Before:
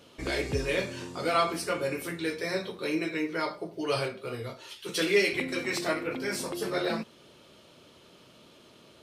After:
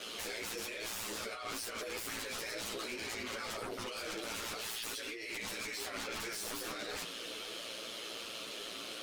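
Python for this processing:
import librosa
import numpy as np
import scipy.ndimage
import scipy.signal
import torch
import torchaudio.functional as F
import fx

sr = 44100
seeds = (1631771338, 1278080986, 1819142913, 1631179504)

y = scipy.signal.sosfilt(scipy.signal.butter(2, 530.0, 'highpass', fs=sr, output='sos'), x)
y = fx.peak_eq(y, sr, hz=870.0, db=-10.5, octaves=0.87)
y = fx.over_compress(y, sr, threshold_db=-44.0, ratio=-1.0)
y = fx.fold_sine(y, sr, drive_db=18, ceiling_db=-25.0)
y = y * np.sin(2.0 * np.pi * 57.0 * np.arange(len(y)) / sr)
y = 10.0 ** (-27.5 / 20.0) * np.tanh(y / 10.0 ** (-27.5 / 20.0))
y = fx.ensemble(y, sr)
y = y * 10.0 ** (-4.5 / 20.0)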